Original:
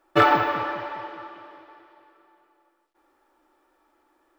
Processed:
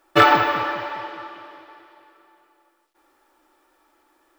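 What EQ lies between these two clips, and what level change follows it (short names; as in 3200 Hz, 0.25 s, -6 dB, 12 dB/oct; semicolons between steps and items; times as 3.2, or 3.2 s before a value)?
high shelf 2100 Hz +7.5 dB; +2.0 dB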